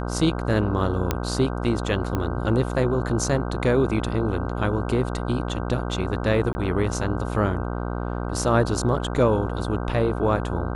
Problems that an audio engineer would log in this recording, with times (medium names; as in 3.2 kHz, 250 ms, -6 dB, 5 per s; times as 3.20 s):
buzz 60 Hz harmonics 26 -28 dBFS
1.11 s: pop -7 dBFS
2.15 s: pop -13 dBFS
6.53–6.55 s: dropout 20 ms